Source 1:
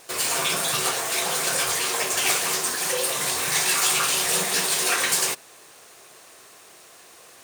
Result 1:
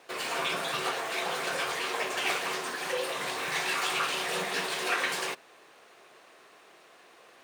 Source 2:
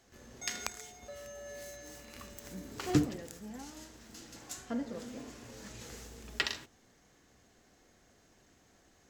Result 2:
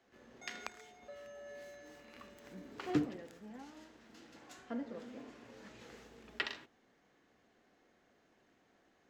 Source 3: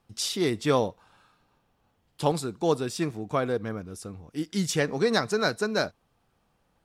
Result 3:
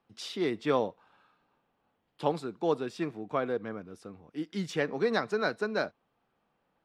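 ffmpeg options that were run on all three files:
-filter_complex "[0:a]acrossover=split=170 3800:gain=0.224 1 0.158[a][b][c];[a][b][c]amix=inputs=3:normalize=0,volume=-3.5dB"

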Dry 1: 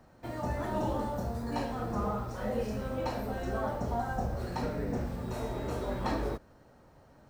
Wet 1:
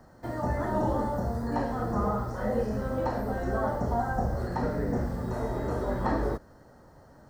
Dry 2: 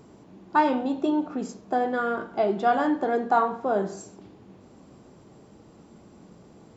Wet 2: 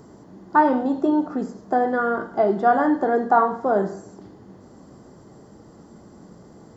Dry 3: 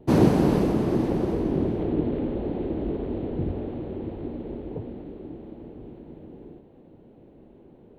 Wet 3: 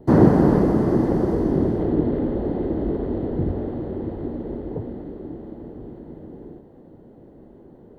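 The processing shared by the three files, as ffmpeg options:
-filter_complex "[0:a]superequalizer=12b=0.282:13b=0.501,acrossover=split=2700[a][b];[b]acompressor=threshold=-59dB:ratio=4:attack=1:release=60[c];[a][c]amix=inputs=2:normalize=0,volume=4.5dB"

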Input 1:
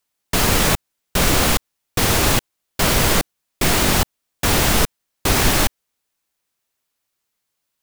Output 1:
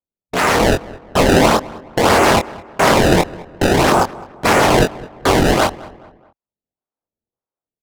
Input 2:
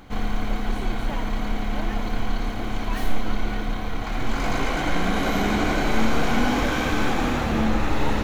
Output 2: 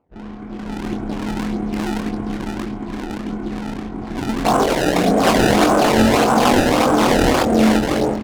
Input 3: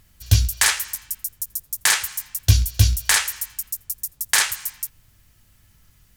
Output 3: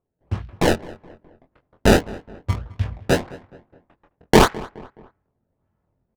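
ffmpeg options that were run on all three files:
-filter_complex "[0:a]afwtdn=0.0891,agate=range=-6dB:threshold=-39dB:ratio=16:detection=peak,acrossover=split=960[a][b];[a]dynaudnorm=f=470:g=3:m=16dB[c];[b]aeval=exprs='0.119*(abs(mod(val(0)/0.119+3,4)-2)-1)':c=same[d];[c][d]amix=inputs=2:normalize=0,bandpass=f=1.6k:t=q:w=0.54:csg=0,asplit=2[e][f];[f]asoftclip=type=hard:threshold=-23dB,volume=-3.5dB[g];[e][g]amix=inputs=2:normalize=0,acrusher=samples=23:mix=1:aa=0.000001:lfo=1:lforange=36.8:lforate=1.7,adynamicsmooth=sensitivity=6:basefreq=1.2k,asplit=2[h][i];[i]adelay=23,volume=-5dB[j];[h][j]amix=inputs=2:normalize=0,asplit=2[k][l];[l]adelay=211,lowpass=f=2.2k:p=1,volume=-19.5dB,asplit=2[m][n];[n]adelay=211,lowpass=f=2.2k:p=1,volume=0.43,asplit=2[o][p];[p]adelay=211,lowpass=f=2.2k:p=1,volume=0.43[q];[k][m][o][q]amix=inputs=4:normalize=0,volume=5dB"

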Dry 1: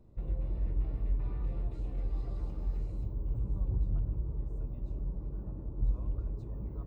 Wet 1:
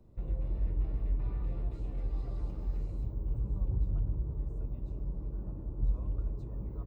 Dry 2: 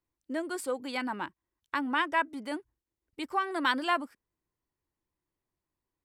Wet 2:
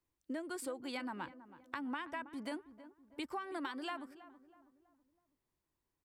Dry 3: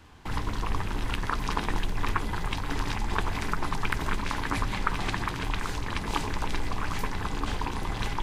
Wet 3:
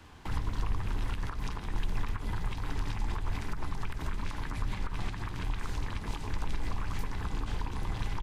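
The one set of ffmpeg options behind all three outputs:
-filter_complex "[0:a]alimiter=limit=-19dB:level=0:latency=1:release=127,acrossover=split=150[a][b];[b]acompressor=threshold=-40dB:ratio=5[c];[a][c]amix=inputs=2:normalize=0,asplit=2[d][e];[e]adelay=324,lowpass=f=1.3k:p=1,volume=-14dB,asplit=2[f][g];[g]adelay=324,lowpass=f=1.3k:p=1,volume=0.46,asplit=2[h][i];[i]adelay=324,lowpass=f=1.3k:p=1,volume=0.46,asplit=2[j][k];[k]adelay=324,lowpass=f=1.3k:p=1,volume=0.46[l];[f][h][j][l]amix=inputs=4:normalize=0[m];[d][m]amix=inputs=2:normalize=0"

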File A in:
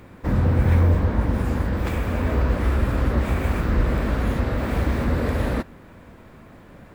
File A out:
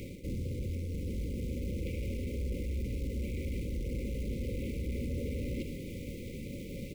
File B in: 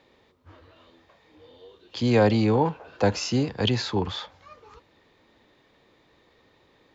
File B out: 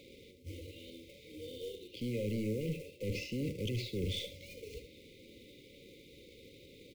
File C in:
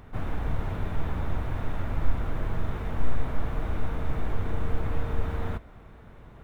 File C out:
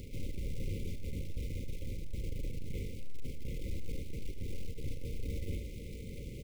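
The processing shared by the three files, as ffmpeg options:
-filter_complex "[0:a]acrossover=split=2900[a][b];[b]acompressor=threshold=-55dB:ratio=4:attack=1:release=60[c];[a][c]amix=inputs=2:normalize=0,acrusher=bits=3:mode=log:mix=0:aa=0.000001,areverse,acompressor=threshold=-32dB:ratio=16,areverse,aeval=exprs='(tanh(79.4*val(0)+0.15)-tanh(0.15))/79.4':c=same,afftfilt=real='re*(1-between(b*sr/4096,580,2000))':imag='im*(1-between(b*sr/4096,580,2000))':win_size=4096:overlap=0.75,asplit=2[d][e];[e]aecho=0:1:75:0.299[f];[d][f]amix=inputs=2:normalize=0,volume=6dB"

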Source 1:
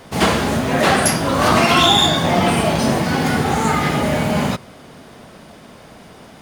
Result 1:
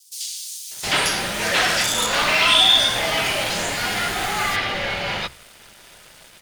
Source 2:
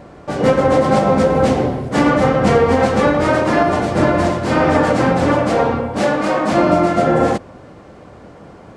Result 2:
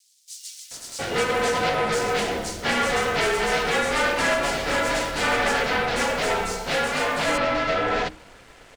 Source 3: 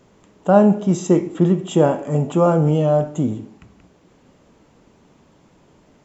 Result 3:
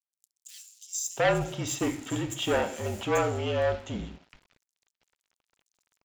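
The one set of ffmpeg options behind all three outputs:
-filter_complex "[0:a]acrossover=split=6200[a][b];[b]acompressor=threshold=-40dB:ratio=4:attack=1:release=60[c];[a][c]amix=inputs=2:normalize=0,acrossover=split=270|1200[d][e][f];[d]alimiter=limit=-20dB:level=0:latency=1:release=139[g];[g][e][f]amix=inputs=3:normalize=0,bandreject=f=60:t=h:w=6,bandreject=f=120:t=h:w=6,bandreject=f=180:t=h:w=6,bandreject=f=240:t=h:w=6,bandreject=f=300:t=h:w=6,bandreject=f=360:t=h:w=6,asoftclip=type=tanh:threshold=-11.5dB,asubboost=boost=3.5:cutoff=89,afreqshift=-49,aeval=exprs='sgn(val(0))*max(abs(val(0))-0.00531,0)':c=same,tiltshelf=f=1.3k:g=-9.5,bandreject=f=1.1k:w=12,acrossover=split=5000[h][i];[h]adelay=710[j];[j][i]amix=inputs=2:normalize=0"

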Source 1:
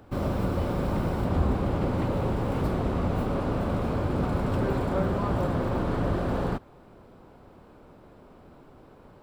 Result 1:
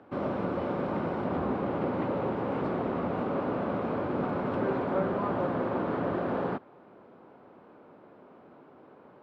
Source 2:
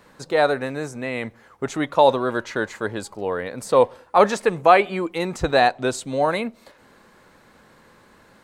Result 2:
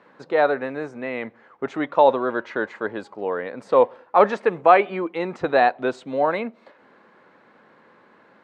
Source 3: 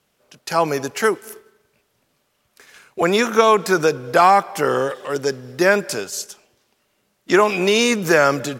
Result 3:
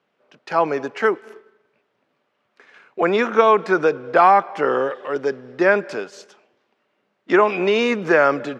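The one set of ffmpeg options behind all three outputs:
-af "highpass=220,lowpass=2.4k"

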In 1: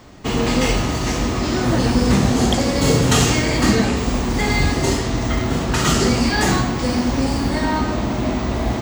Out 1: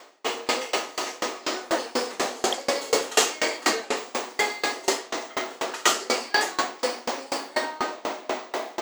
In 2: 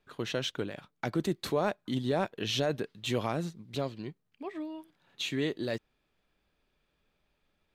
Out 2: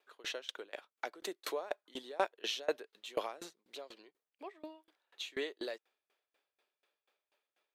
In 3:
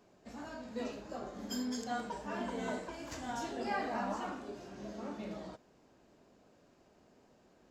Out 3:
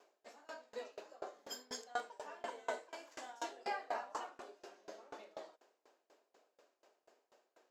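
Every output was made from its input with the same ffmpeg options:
-af "highpass=f=410:w=0.5412,highpass=f=410:w=1.3066,aeval=exprs='val(0)*pow(10,-26*if(lt(mod(4.1*n/s,1),2*abs(4.1)/1000),1-mod(4.1*n/s,1)/(2*abs(4.1)/1000),(mod(4.1*n/s,1)-2*abs(4.1)/1000)/(1-2*abs(4.1)/1000))/20)':c=same,volume=3.5dB"

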